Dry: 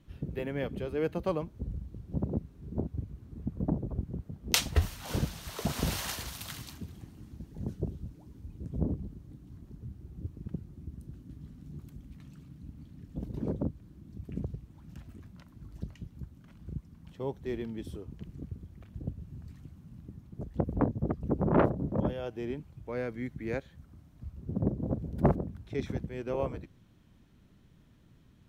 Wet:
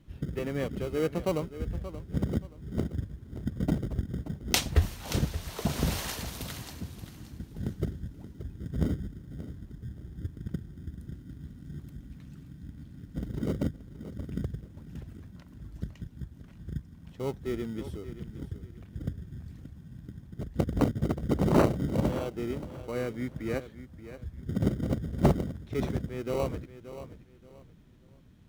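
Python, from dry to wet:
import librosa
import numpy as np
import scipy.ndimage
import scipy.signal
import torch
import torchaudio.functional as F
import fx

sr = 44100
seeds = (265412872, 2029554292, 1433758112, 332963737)

p1 = fx.echo_feedback(x, sr, ms=578, feedback_pct=27, wet_db=-13.0)
p2 = fx.sample_hold(p1, sr, seeds[0], rate_hz=1700.0, jitter_pct=0)
y = p1 + F.gain(torch.from_numpy(p2), -8.5).numpy()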